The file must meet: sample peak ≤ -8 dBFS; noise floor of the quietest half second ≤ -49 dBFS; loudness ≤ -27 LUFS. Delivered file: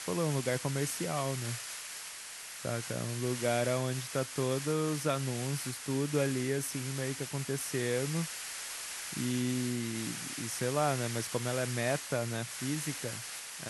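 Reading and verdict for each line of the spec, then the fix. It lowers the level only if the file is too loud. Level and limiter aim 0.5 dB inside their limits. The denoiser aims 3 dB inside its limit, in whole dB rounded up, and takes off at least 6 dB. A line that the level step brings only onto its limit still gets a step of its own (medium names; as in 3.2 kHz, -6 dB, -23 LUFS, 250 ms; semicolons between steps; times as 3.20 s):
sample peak -16.5 dBFS: pass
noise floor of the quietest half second -45 dBFS: fail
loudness -34.0 LUFS: pass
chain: noise reduction 7 dB, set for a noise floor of -45 dBFS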